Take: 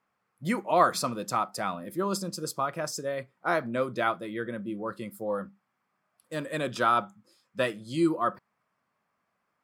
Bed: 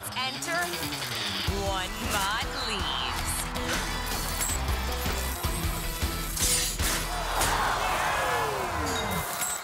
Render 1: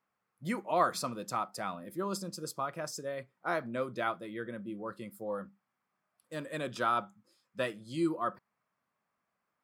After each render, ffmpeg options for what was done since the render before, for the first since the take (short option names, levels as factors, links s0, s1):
-af "volume=0.501"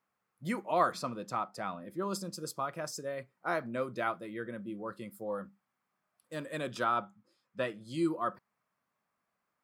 -filter_complex "[0:a]asettb=1/sr,asplit=3[s0][s1][s2];[s0]atrim=end=0.924[s3];[s1]atrim=start=0.92:end=2.02,asetpts=PTS-STARTPTS,afade=t=in:d=0.004:c=qsin,afade=t=out:st=1.096:d=0.004:c=qsin,lowpass=f=3400:p=1[s4];[s2]atrim=start=2.016[s5];[s3][s4]acrossfade=d=0.004:c1=hsin:c2=qsin[s6];[s6][s5]acrossfade=d=0.004:c1=qsin:c2=hsin,asettb=1/sr,asplit=3[s7][s8][s9];[s7]atrim=end=2.924[s10];[s8]atrim=start=2.92:end=4.55,asetpts=PTS-STARTPTS,afade=t=in:d=0.004:c=qsin,afade=t=out:st=1.626:d=0.004:c=qsin,bandreject=f=3400:w=12[s11];[s9]atrim=start=4.546[s12];[s10][s11]acrossfade=d=0.004:c1=hsin:c2=qsin[s13];[s13][s12]acrossfade=d=0.004:c1=qsin:c2=hsin,asettb=1/sr,asplit=3[s14][s15][s16];[s14]atrim=end=6.844[s17];[s15]atrim=start=6.84:end=7.81,asetpts=PTS-STARTPTS,afade=t=in:d=0.004:c=qsin,afade=t=out:st=0.966:d=0.004:c=qsin,highshelf=f=5300:g=-11[s18];[s16]atrim=start=7.806[s19];[s17][s18]acrossfade=d=0.004:c1=hsin:c2=qsin[s20];[s20][s19]acrossfade=d=0.004:c1=qsin:c2=hsin"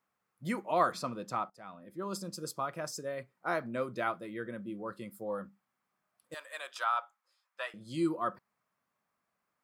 -filter_complex "[0:a]asettb=1/sr,asplit=3[s0][s1][s2];[s0]atrim=end=6.344[s3];[s1]atrim=start=6.34:end=7.74,asetpts=PTS-STARTPTS,afade=t=in:d=0.004:c=qsin,afade=t=out:st=1.396:d=0.004:c=qsin,highpass=f=740:w=0.5412,highpass=f=740:w=1.3066[s4];[s2]atrim=start=7.736[s5];[s3][s4]acrossfade=d=0.004:c1=hsin:c2=qsin[s6];[s6][s5]acrossfade=d=0.004:c1=qsin:c2=hsin,asplit=2[s7][s8];[s7]atrim=end=1.5,asetpts=PTS-STARTPTS,afade=t=out:st=1.496:d=0.004:c=hsin:silence=0.125893[s9];[s8]atrim=start=1.5,asetpts=PTS-STARTPTS,afade=t=in:d=0.85:silence=0.125893[s10];[s9][s10]concat=n=2:v=0:a=1"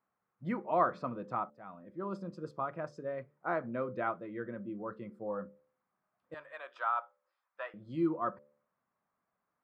-af "lowpass=1600,bandreject=f=73.18:t=h:w=4,bandreject=f=146.36:t=h:w=4,bandreject=f=219.54:t=h:w=4,bandreject=f=292.72:t=h:w=4,bandreject=f=365.9:t=h:w=4,bandreject=f=439.08:t=h:w=4,bandreject=f=512.26:t=h:w=4,bandreject=f=585.44:t=h:w=4"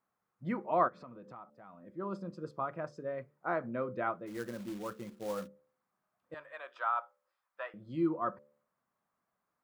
-filter_complex "[0:a]asplit=3[s0][s1][s2];[s0]afade=t=out:st=0.87:d=0.02[s3];[s1]acompressor=threshold=0.00316:ratio=3:attack=3.2:release=140:knee=1:detection=peak,afade=t=in:st=0.87:d=0.02,afade=t=out:st=1.82:d=0.02[s4];[s2]afade=t=in:st=1.82:d=0.02[s5];[s3][s4][s5]amix=inputs=3:normalize=0,asplit=3[s6][s7][s8];[s6]afade=t=out:st=4.26:d=0.02[s9];[s7]acrusher=bits=3:mode=log:mix=0:aa=0.000001,afade=t=in:st=4.26:d=0.02,afade=t=out:st=5.46:d=0.02[s10];[s8]afade=t=in:st=5.46:d=0.02[s11];[s9][s10][s11]amix=inputs=3:normalize=0"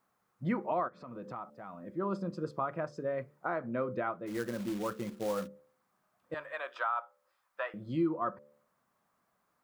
-filter_complex "[0:a]asplit=2[s0][s1];[s1]acompressor=threshold=0.00891:ratio=6,volume=1.41[s2];[s0][s2]amix=inputs=2:normalize=0,alimiter=limit=0.0794:level=0:latency=1:release=389"